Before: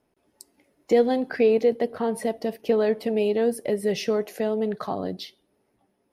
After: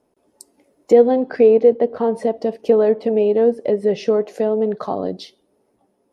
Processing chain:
treble cut that deepens with the level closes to 2,700 Hz, closed at −20.5 dBFS
octave-band graphic EQ 250/500/1,000/2,000/8,000 Hz +4/+7/+4/−3/+6 dB

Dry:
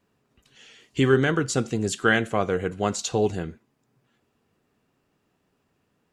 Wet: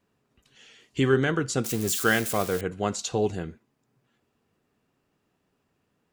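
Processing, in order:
0:01.64–0:02.61: spike at every zero crossing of −20.5 dBFS
level −2.5 dB

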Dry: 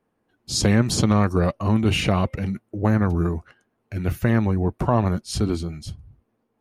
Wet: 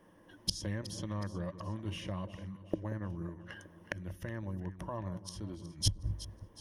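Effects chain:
gate with flip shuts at −25 dBFS, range −31 dB
EQ curve with evenly spaced ripples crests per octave 1.2, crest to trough 10 dB
on a send: delay that swaps between a low-pass and a high-pass 184 ms, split 990 Hz, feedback 68%, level −12 dB
on the sum: level +9.5 dB

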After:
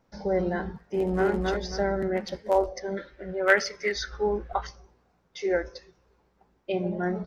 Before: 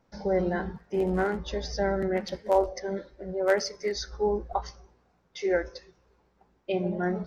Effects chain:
0:00.87–0:01.29: delay throw 270 ms, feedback 30%, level −2 dB
0:02.97–0:04.67: flat-topped bell 2,100 Hz +10.5 dB

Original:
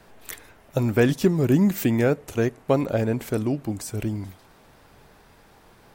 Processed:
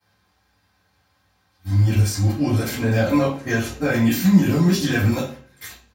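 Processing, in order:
played backwards from end to start
noise gate −40 dBFS, range −20 dB
guitar amp tone stack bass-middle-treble 5-5-5
comb filter 3.8 ms, depth 39%
brickwall limiter −33 dBFS, peak gain reduction 11 dB
convolution reverb RT60 0.45 s, pre-delay 3 ms, DRR −16 dB
level +3.5 dB

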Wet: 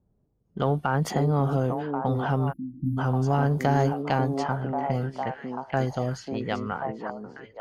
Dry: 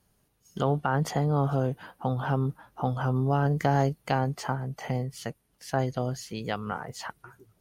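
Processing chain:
low-pass that shuts in the quiet parts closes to 480 Hz, open at −24.5 dBFS
echo through a band-pass that steps 541 ms, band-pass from 310 Hz, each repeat 1.4 octaves, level −1 dB
in parallel at −12 dB: soft clipping −22 dBFS, distortion −12 dB
on the sum: time-frequency box erased 0:02.53–0:02.98, 330–10,000 Hz

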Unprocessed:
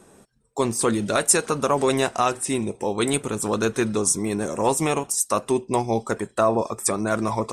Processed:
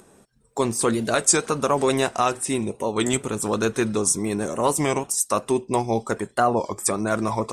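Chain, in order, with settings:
noise gate −41 dBFS, range −34 dB
upward compression, threshold −28 dBFS
wow of a warped record 33 1/3 rpm, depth 160 cents

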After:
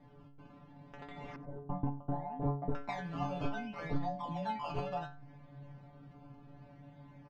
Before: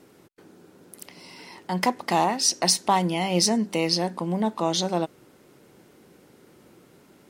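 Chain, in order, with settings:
0:03.43–0:04.71: all-pass dispersion lows, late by 102 ms, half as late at 470 Hz
downward compressor 6 to 1, threshold −34 dBFS, peak gain reduction 17 dB
phaser with its sweep stopped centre 2,000 Hz, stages 8
in parallel at −10 dB: slack as between gear wheels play −48 dBFS
on the sum: sample-and-hold swept by an LFO 16×, swing 100% 0.68 Hz
spectral tilt −2 dB per octave
stiff-string resonator 140 Hz, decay 0.4 s, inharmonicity 0.002
0:01.36–0:02.75: low-pass that shuts in the quiet parts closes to 480 Hz, open at −22 dBFS
high-frequency loss of the air 200 metres
single-tap delay 92 ms −21.5 dB
level +13 dB

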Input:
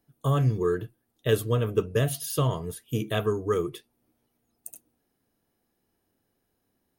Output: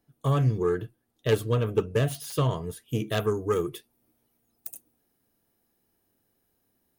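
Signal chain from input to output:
phase distortion by the signal itself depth 0.097 ms
high-shelf EQ 9,800 Hz −3.5 dB, from 0:03.12 +8.5 dB

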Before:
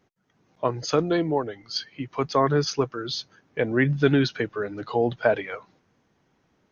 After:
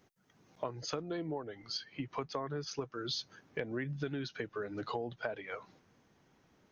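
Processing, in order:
downward compressor 10 to 1, threshold −34 dBFS, peak gain reduction 20 dB
high-shelf EQ 5,600 Hz +8 dB, from 0:00.83 −3.5 dB, from 0:02.71 +4 dB
level −1 dB

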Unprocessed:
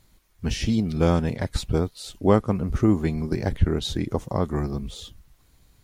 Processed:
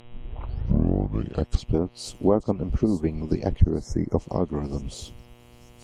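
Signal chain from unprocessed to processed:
turntable start at the beginning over 1.73 s
hum with harmonics 120 Hz, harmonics 32, −46 dBFS −2 dB per octave
treble cut that deepens with the level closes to 1,200 Hz, closed at −15.5 dBFS
parametric band 1,600 Hz −13.5 dB 1.3 octaves
notch filter 3,600 Hz, Q 6.1
harmonic and percussive parts rebalanced harmonic −15 dB
in parallel at −0.5 dB: downward compressor, threshold −34 dBFS, peak gain reduction 19 dB
on the sum: time-frequency box erased 0:03.60–0:04.18, 2,200–5,100 Hz
on a send: delay with a high-pass on its return 883 ms, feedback 46%, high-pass 5,000 Hz, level −11.5 dB
on the sum: level +2 dB

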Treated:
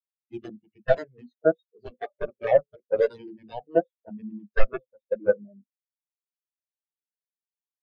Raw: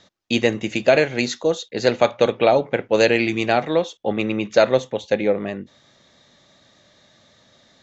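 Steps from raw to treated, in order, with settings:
harmonic generator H 3 −28 dB, 4 −26 dB, 7 −14 dB, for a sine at −2 dBFS
wave folding −13 dBFS
every bin expanded away from the loudest bin 4 to 1
level +8.5 dB

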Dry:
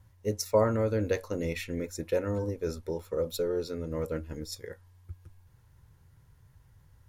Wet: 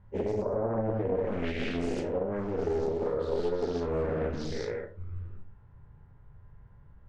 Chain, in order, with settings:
every bin's largest magnitude spread in time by 240 ms
low-pass that shuts in the quiet parts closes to 1,500 Hz, open at −20.5 dBFS
Bessel low-pass filter 11,000 Hz, from 0:04.02 4,200 Hz
treble cut that deepens with the level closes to 730 Hz, closed at −18 dBFS
brickwall limiter −23 dBFS, peak gain reduction 11 dB
rectangular room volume 180 cubic metres, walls furnished, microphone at 1.3 metres
highs frequency-modulated by the lows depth 0.57 ms
level −3 dB

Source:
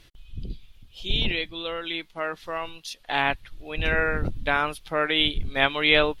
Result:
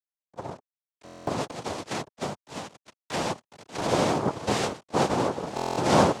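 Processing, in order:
phaser swept by the level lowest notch 390 Hz, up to 3,200 Hz, full sweep at −19.5 dBFS
feedback delay with all-pass diffusion 466 ms, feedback 56%, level −16 dB
noise gate −33 dBFS, range −13 dB
parametric band 1,500 Hz −7 dB 1.2 octaves
notch filter 3,700 Hz, Q 5.5
bit reduction 8 bits
cochlear-implant simulation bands 2
high-shelf EQ 4,800 Hz −10.5 dB
buffer that repeats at 0:01.04/0:05.55, samples 1,024, times 9
0:01.48–0:03.81: multiband upward and downward compressor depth 70%
level +5 dB

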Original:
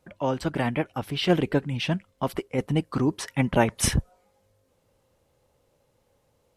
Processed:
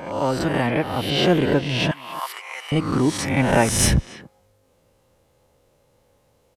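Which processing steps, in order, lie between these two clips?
peak hold with a rise ahead of every peak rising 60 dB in 0.79 s
0:01.91–0:02.72: high-pass filter 980 Hz 24 dB per octave
in parallel at −5.5 dB: soft clipping −19.5 dBFS, distortion −10 dB
on the sum: far-end echo of a speakerphone 280 ms, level −14 dB

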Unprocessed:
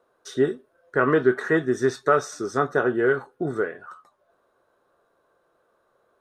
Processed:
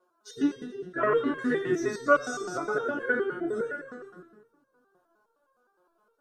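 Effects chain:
spectral magnitudes quantised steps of 30 dB
echo with a time of its own for lows and highs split 350 Hz, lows 188 ms, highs 107 ms, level −5.5 dB
step-sequenced resonator 9.7 Hz 180–540 Hz
level +9 dB

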